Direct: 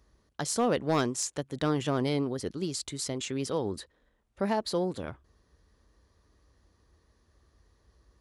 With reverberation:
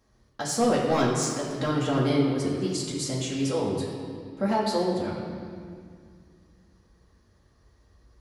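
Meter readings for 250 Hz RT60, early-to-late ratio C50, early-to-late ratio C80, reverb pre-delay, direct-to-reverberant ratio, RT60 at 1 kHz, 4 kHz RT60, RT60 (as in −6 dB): 2.8 s, 2.0 dB, 3.0 dB, 4 ms, −6.0 dB, 2.1 s, 1.8 s, 2.1 s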